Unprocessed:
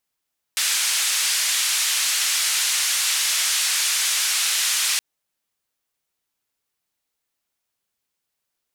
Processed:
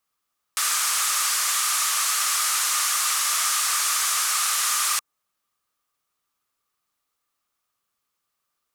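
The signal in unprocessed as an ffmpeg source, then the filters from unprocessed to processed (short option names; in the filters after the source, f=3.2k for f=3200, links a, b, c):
-f lavfi -i "anoisesrc=c=white:d=4.42:r=44100:seed=1,highpass=f=1800,lowpass=f=9100,volume=-11.9dB"
-filter_complex "[0:a]equalizer=f=1.2k:w=5.4:g=15,acrossover=split=550|1900|5400[a][b][c][d];[c]alimiter=level_in=2.5dB:limit=-24dB:level=0:latency=1:release=182,volume=-2.5dB[e];[a][b][e][d]amix=inputs=4:normalize=0"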